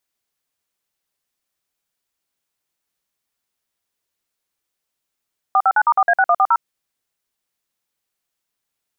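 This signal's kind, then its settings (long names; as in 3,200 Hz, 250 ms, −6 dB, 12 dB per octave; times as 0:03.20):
touch tones "459*4A6140", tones 55 ms, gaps 51 ms, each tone −13.5 dBFS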